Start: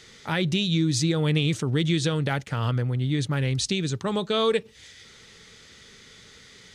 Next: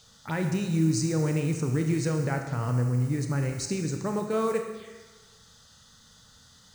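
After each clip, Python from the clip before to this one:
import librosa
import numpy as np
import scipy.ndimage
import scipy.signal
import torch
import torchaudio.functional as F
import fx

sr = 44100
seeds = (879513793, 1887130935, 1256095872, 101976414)

y = fx.mod_noise(x, sr, seeds[0], snr_db=22)
y = fx.env_phaser(y, sr, low_hz=310.0, high_hz=3400.0, full_db=-25.5)
y = fx.rev_schroeder(y, sr, rt60_s=1.3, comb_ms=25, drr_db=4.5)
y = y * 10.0 ** (-3.0 / 20.0)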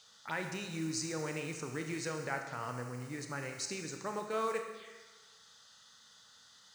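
y = fx.highpass(x, sr, hz=1200.0, slope=6)
y = fx.high_shelf(y, sr, hz=7400.0, db=-11.5)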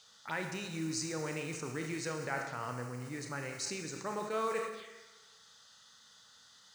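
y = fx.sustainer(x, sr, db_per_s=64.0)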